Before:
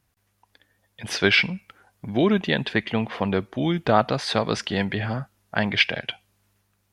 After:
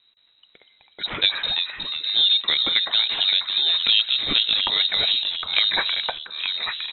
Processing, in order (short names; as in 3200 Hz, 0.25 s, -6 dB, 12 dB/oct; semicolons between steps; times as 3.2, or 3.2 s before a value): treble ducked by the level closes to 1000 Hz, closed at -15.5 dBFS; low shelf 120 Hz +8 dB; in parallel at +3 dB: compressor, threshold -29 dBFS, peak gain reduction 15 dB; on the sum: echoes that change speed 0.189 s, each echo -2 st, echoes 3, each echo -6 dB; inverted band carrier 3900 Hz; on a send: echo 0.826 s -22 dB; on the sum: gain -3 dB